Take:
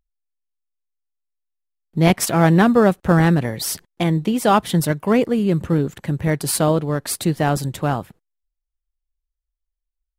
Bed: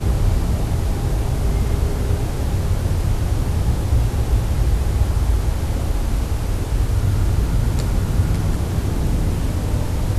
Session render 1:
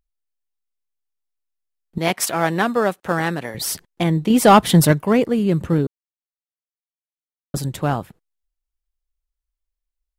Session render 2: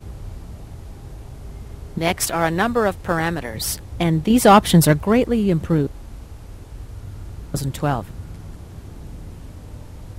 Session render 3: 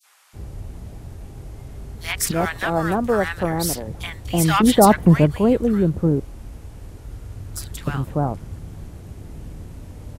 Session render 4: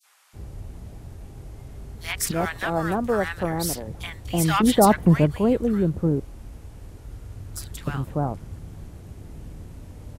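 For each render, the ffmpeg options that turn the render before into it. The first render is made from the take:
-filter_complex "[0:a]asettb=1/sr,asplit=3[s0][s1][s2];[s0]atrim=end=1.984[s3];[s1]atrim=start=1.98:end=3.55,asetpts=PTS-STARTPTS,afade=t=in:d=0.004:c=qsin,afade=t=out:st=1.566:d=0.004:c=qsin,highpass=f=610:p=1[s4];[s2]atrim=start=3.546[s5];[s3][s4]acrossfade=d=0.004:c1=hsin:c2=qsin[s6];[s6][s5]acrossfade=d=0.004:c1=qsin:c2=hsin,asettb=1/sr,asplit=3[s7][s8][s9];[s7]atrim=end=4.304[s10];[s8]atrim=start=4.3:end=5.02,asetpts=PTS-STARTPTS,afade=t=in:d=0.004:c=qsin,afade=t=out:st=0.716:d=0.004:c=qsin,acontrast=64[s11];[s9]atrim=start=5.016[s12];[s10][s11]acrossfade=d=0.004:c1=hsin:c2=qsin[s13];[s13][s12]acrossfade=d=0.004:c1=qsin:c2=hsin,asplit=3[s14][s15][s16];[s14]atrim=end=5.87,asetpts=PTS-STARTPTS,afade=t=out:st=5.866:d=0.004:c=hsin[s17];[s15]atrim=start=5.87:end=7.54,asetpts=PTS-STARTPTS,volume=0[s18];[s16]atrim=start=7.54,asetpts=PTS-STARTPTS,afade=t=in:d=0.004:c=hsin[s19];[s17][s18][s19]concat=n=3:v=0:a=1"
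-filter_complex "[1:a]volume=0.15[s0];[0:a][s0]amix=inputs=2:normalize=0"
-filter_complex "[0:a]acrossover=split=1100|4100[s0][s1][s2];[s1]adelay=30[s3];[s0]adelay=330[s4];[s4][s3][s2]amix=inputs=3:normalize=0"
-af "volume=0.668"

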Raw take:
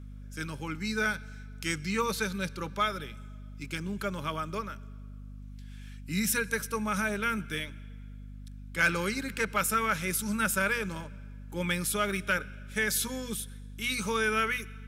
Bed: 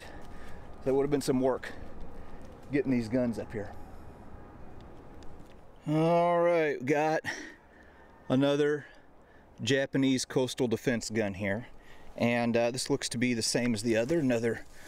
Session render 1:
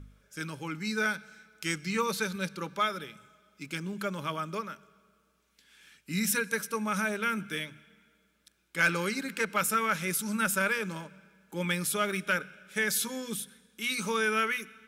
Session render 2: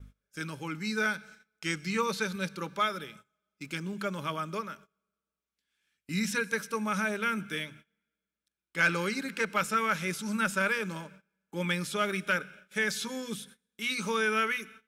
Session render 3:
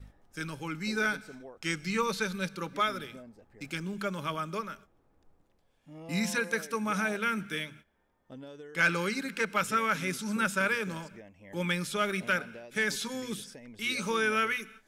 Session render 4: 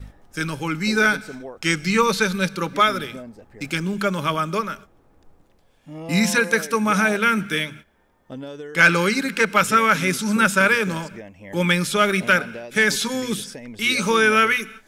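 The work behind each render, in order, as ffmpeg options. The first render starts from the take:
-af "bandreject=f=50:t=h:w=4,bandreject=f=100:t=h:w=4,bandreject=f=150:t=h:w=4,bandreject=f=200:t=h:w=4,bandreject=f=250:t=h:w=4"
-filter_complex "[0:a]acrossover=split=7000[s0][s1];[s1]acompressor=threshold=0.00355:ratio=4:attack=1:release=60[s2];[s0][s2]amix=inputs=2:normalize=0,agate=range=0.0891:threshold=0.00282:ratio=16:detection=peak"
-filter_complex "[1:a]volume=0.1[s0];[0:a][s0]amix=inputs=2:normalize=0"
-af "volume=3.76"

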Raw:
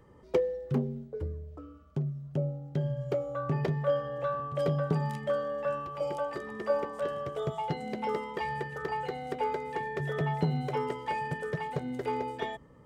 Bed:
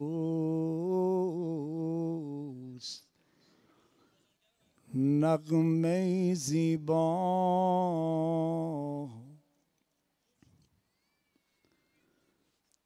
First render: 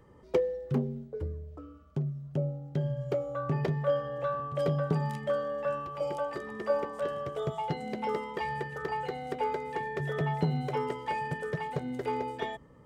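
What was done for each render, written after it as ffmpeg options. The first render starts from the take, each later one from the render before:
-af anull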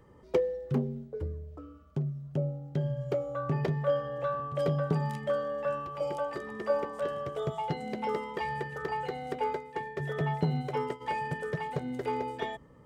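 -filter_complex "[0:a]asplit=3[s0][s1][s2];[s0]afade=t=out:st=9.39:d=0.02[s3];[s1]agate=range=0.0224:threshold=0.0251:ratio=3:release=100:detection=peak,afade=t=in:st=9.39:d=0.02,afade=t=out:st=11:d=0.02[s4];[s2]afade=t=in:st=11:d=0.02[s5];[s3][s4][s5]amix=inputs=3:normalize=0"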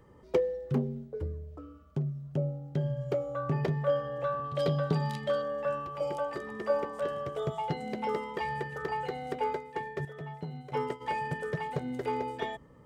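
-filter_complex "[0:a]asettb=1/sr,asplit=3[s0][s1][s2];[s0]atrim=end=4.444[s3];[s1]atrim=start=4.44:end=5.42,asetpts=PTS-STARTPTS,afade=t=in:d=0.004:c=qsin,afade=t=out:st=0.976:d=0.004:c=qsin,equalizer=f=4000:t=o:w=0.8:g=10.5[s4];[s2]atrim=start=5.416[s5];[s3][s4]acrossfade=d=0.004:c1=hsin:c2=qsin[s6];[s6][s5]acrossfade=d=0.004:c1=qsin:c2=hsin,asplit=3[s7][s8][s9];[s7]atrim=end=10.052[s10];[s8]atrim=start=10.048:end=10.722,asetpts=PTS-STARTPTS,volume=0.282[s11];[s9]atrim=start=10.718[s12];[s10][s11]acrossfade=d=0.004:c1=hsin:c2=hsin[s13];[s13][s12]acrossfade=d=0.004:c1=hsin:c2=hsin"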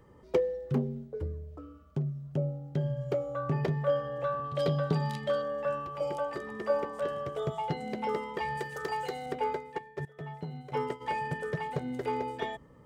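-filter_complex "[0:a]asettb=1/sr,asplit=3[s0][s1][s2];[s0]atrim=end=8.574[s3];[s1]atrim=start=8.57:end=9.26,asetpts=PTS-STARTPTS,afade=t=in:d=0.004:c=qsin,afade=t=out:st=0.686:d=0.004:c=qsin,bass=f=250:g=-5,treble=f=4000:g=11[s4];[s2]atrim=start=9.256[s5];[s3][s4]acrossfade=d=0.004:c1=hsin:c2=qsin[s6];[s6][s5]acrossfade=d=0.004:c1=qsin:c2=hsin,asettb=1/sr,asplit=3[s7][s8][s9];[s7]atrim=end=9.784[s10];[s8]atrim=start=9.78:end=10.19,asetpts=PTS-STARTPTS,afade=t=in:d=0.004:c=qsin,afade=t=out:st=0.406:d=0.004:c=qsin,agate=range=0.282:threshold=0.0178:ratio=16:release=100:detection=peak[s11];[s9]atrim=start=10.186[s12];[s10][s11]acrossfade=d=0.004:c1=hsin:c2=qsin[s13];[s13][s12]acrossfade=d=0.004:c1=qsin:c2=hsin"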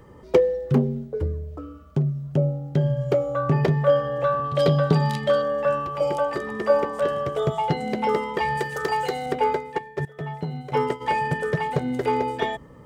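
-af "volume=2.99"

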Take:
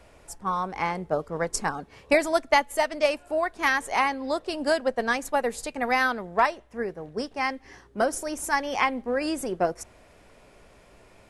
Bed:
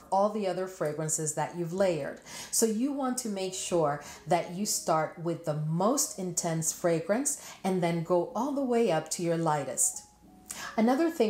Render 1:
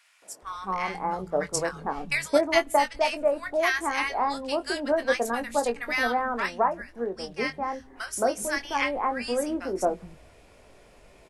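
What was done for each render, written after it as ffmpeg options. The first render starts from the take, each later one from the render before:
-filter_complex "[0:a]asplit=2[s0][s1];[s1]adelay=21,volume=0.355[s2];[s0][s2]amix=inputs=2:normalize=0,acrossover=split=180|1300[s3][s4][s5];[s4]adelay=220[s6];[s3]adelay=420[s7];[s7][s6][s5]amix=inputs=3:normalize=0"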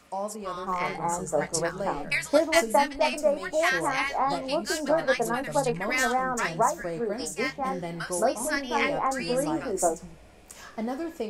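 -filter_complex "[1:a]volume=0.473[s0];[0:a][s0]amix=inputs=2:normalize=0"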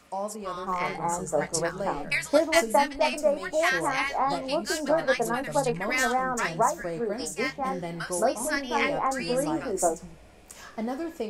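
-af anull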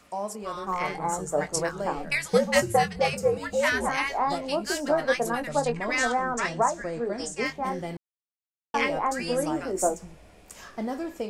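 -filter_complex "[0:a]asettb=1/sr,asplit=3[s0][s1][s2];[s0]atrim=end=2.284[s3];[s1]atrim=start=2.28:end=3.89,asetpts=PTS-STARTPTS,afade=t=in:d=0.004:c=qsin,afade=t=out:st=1.606:d=0.004:c=qsin,afreqshift=-97[s4];[s2]atrim=start=3.886[s5];[s3][s4]acrossfade=d=0.004:c1=hsin:c2=qsin[s6];[s6][s5]acrossfade=d=0.004:c1=qsin:c2=hsin,asettb=1/sr,asplit=3[s7][s8][s9];[s7]atrim=end=5.494[s10];[s8]atrim=start=5.49:end=7.46,asetpts=PTS-STARTPTS,afade=t=in:d=0.004:c=qsin,afade=t=out:st=1.966:d=0.004:c=qsin,lowpass=f=8800:w=0.5412,lowpass=f=8800:w=1.3066[s11];[s9]atrim=start=7.456[s12];[s10][s11]acrossfade=d=0.004:c1=hsin:c2=qsin[s13];[s13][s12]acrossfade=d=0.004:c1=qsin:c2=hsin,asplit=3[s14][s15][s16];[s14]atrim=end=7.97,asetpts=PTS-STARTPTS,afade=t=out:st=7.966:d=0.004:c=hsin[s17];[s15]atrim=start=7.97:end=8.74,asetpts=PTS-STARTPTS,volume=0[s18];[s16]atrim=start=8.74,asetpts=PTS-STARTPTS,afade=t=in:d=0.004:c=hsin[s19];[s17][s18][s19]concat=n=3:v=0:a=1"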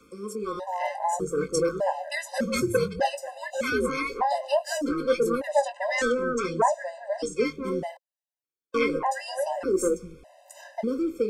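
-filter_complex "[0:a]acrossover=split=350|520|5400[s0][s1][s2][s3];[s1]aeval=exprs='0.126*sin(PI/2*2.82*val(0)/0.126)':c=same[s4];[s0][s4][s2][s3]amix=inputs=4:normalize=0,afftfilt=real='re*gt(sin(2*PI*0.83*pts/sr)*(1-2*mod(floor(b*sr/1024/520),2)),0)':imag='im*gt(sin(2*PI*0.83*pts/sr)*(1-2*mod(floor(b*sr/1024/520),2)),0)':win_size=1024:overlap=0.75"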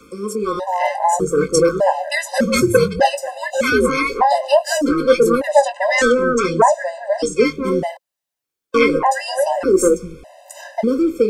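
-af "volume=3.35,alimiter=limit=0.891:level=0:latency=1"

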